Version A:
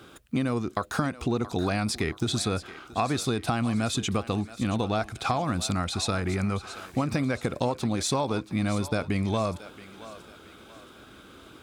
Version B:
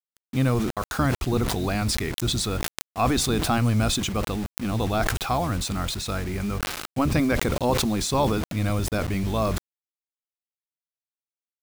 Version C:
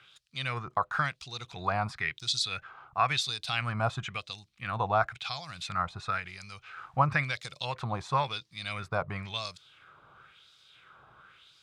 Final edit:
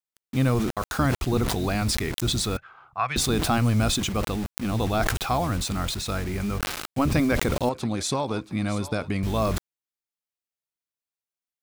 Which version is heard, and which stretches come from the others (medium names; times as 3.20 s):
B
2.57–3.16 s: from C
7.69–9.23 s: from A